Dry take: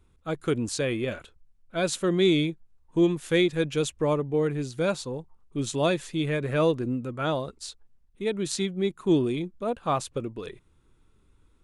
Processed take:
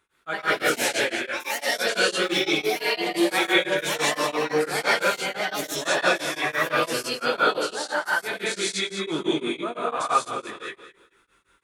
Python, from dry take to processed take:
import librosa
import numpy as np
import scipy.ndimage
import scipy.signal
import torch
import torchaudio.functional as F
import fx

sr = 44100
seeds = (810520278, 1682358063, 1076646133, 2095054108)

p1 = fx.highpass(x, sr, hz=950.0, slope=6)
p2 = fx.peak_eq(p1, sr, hz=1600.0, db=9.0, octaves=0.95)
p3 = fx.rider(p2, sr, range_db=5, speed_s=0.5)
p4 = p2 + (p3 * librosa.db_to_amplitude(0.5))
p5 = fx.chorus_voices(p4, sr, voices=4, hz=0.43, base_ms=19, depth_ms=2.1, mix_pct=35)
p6 = p5 + fx.echo_feedback(p5, sr, ms=212, feedback_pct=26, wet_db=-12, dry=0)
p7 = fx.rev_gated(p6, sr, seeds[0], gate_ms=240, shape='rising', drr_db=-6.5)
p8 = fx.echo_pitch(p7, sr, ms=108, semitones=4, count=2, db_per_echo=-3.0)
p9 = p8 * np.abs(np.cos(np.pi * 5.9 * np.arange(len(p8)) / sr))
y = p9 * librosa.db_to_amplitude(-3.0)